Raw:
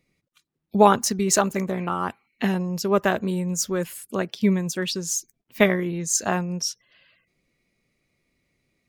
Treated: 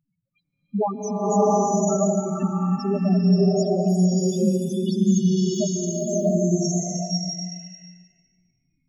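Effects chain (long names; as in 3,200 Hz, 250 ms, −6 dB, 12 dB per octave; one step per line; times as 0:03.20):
dynamic equaliser 1,800 Hz, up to −4 dB, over −36 dBFS, Q 2.1
in parallel at 0 dB: downward compressor, threshold −28 dBFS, peak gain reduction 17.5 dB
on the sum: spectral peaks only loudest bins 2
slow-attack reverb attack 730 ms, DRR −8 dB
level −3 dB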